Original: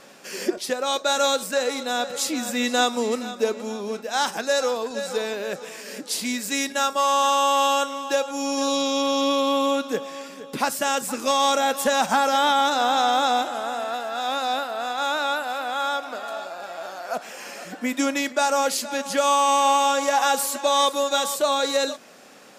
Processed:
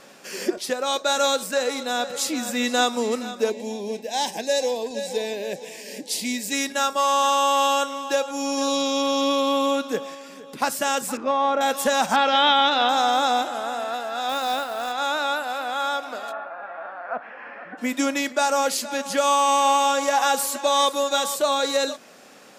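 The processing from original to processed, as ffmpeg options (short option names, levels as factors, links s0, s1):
-filter_complex "[0:a]asettb=1/sr,asplit=3[s0][s1][s2];[s0]atrim=end=3.504[s3];[s1]atrim=start=3.5:end=6.53,asetpts=PTS-STARTPTS,afade=t=in:d=0.004:c=qsin,afade=t=out:st=3.026:d=0.004:c=qsin,asuperstop=centerf=1300:order=4:qfactor=1.5[s4];[s2]atrim=start=6.526[s5];[s3][s4]acrossfade=d=0.004:c1=hsin:c2=qsin[s6];[s6][s5]acrossfade=d=0.004:c1=qsin:c2=hsin,asettb=1/sr,asplit=3[s7][s8][s9];[s7]atrim=end=10.144[s10];[s8]atrim=start=10.14:end=10.62,asetpts=PTS-STARTPTS,afade=t=in:d=0.004:c=qsin,afade=t=out:st=0.476:d=0.004:c=qsin,acompressor=threshold=0.0126:ratio=2.5:attack=3.2:release=140:knee=1:detection=peak[s11];[s9]atrim=start=10.616[s12];[s10][s11]acrossfade=d=0.004:c1=hsin:c2=qsin[s13];[s13][s12]acrossfade=d=0.004:c1=qsin:c2=hsin,asettb=1/sr,asplit=3[s14][s15][s16];[s14]atrim=end=11.174[s17];[s15]atrim=start=11.17:end=11.61,asetpts=PTS-STARTPTS,afade=t=in:d=0.004:c=qsin,afade=t=out:st=0.436:d=0.004:c=qsin,lowpass=1700[s18];[s16]atrim=start=11.606[s19];[s17][s18]acrossfade=d=0.004:c1=hsin:c2=qsin[s20];[s20][s19]acrossfade=d=0.004:c1=qsin:c2=hsin,asettb=1/sr,asplit=3[s21][s22][s23];[s21]atrim=end=12.164[s24];[s22]atrim=start=12.16:end=12.89,asetpts=PTS-STARTPTS,afade=t=in:d=0.004:c=qsin,afade=t=out:st=0.726:d=0.004:c=qsin,lowpass=f=3200:t=q:w=2.5[s25];[s23]atrim=start=12.886[s26];[s24][s25]acrossfade=d=0.004:c1=hsin:c2=qsin[s27];[s27][s26]acrossfade=d=0.004:c1=qsin:c2=hsin,asettb=1/sr,asplit=3[s28][s29][s30];[s28]atrim=end=14.294[s31];[s29]atrim=start=14.29:end=14.92,asetpts=PTS-STARTPTS,afade=t=in:d=0.004:c=qsin,afade=t=out:st=0.626:d=0.004:c=qsin,acrusher=bits=4:mode=log:mix=0:aa=0.000001[s32];[s30]atrim=start=14.916[s33];[s31][s32]acrossfade=d=0.004:c1=hsin:c2=qsin[s34];[s34][s33]acrossfade=d=0.004:c1=qsin:c2=hsin,asplit=3[s35][s36][s37];[s35]afade=t=out:st=16.31:d=0.02[s38];[s36]highpass=140,equalizer=f=180:t=q:w=4:g=-8,equalizer=f=370:t=q:w=4:g=-9,equalizer=f=600:t=q:w=4:g=-3,equalizer=f=1100:t=q:w=4:g=3,equalizer=f=1700:t=q:w=4:g=4,lowpass=f=2100:w=0.5412,lowpass=f=2100:w=1.3066,afade=t=in:st=16.31:d=0.02,afade=t=out:st=17.77:d=0.02[s39];[s37]afade=t=in:st=17.77:d=0.02[s40];[s38][s39][s40]amix=inputs=3:normalize=0"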